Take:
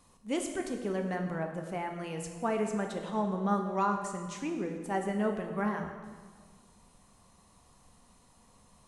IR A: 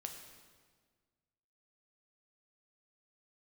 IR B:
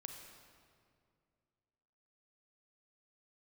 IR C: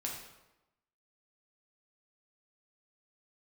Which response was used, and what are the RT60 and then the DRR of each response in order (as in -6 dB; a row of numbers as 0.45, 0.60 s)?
A; 1.6, 2.3, 1.0 s; 3.5, 3.5, -2.0 dB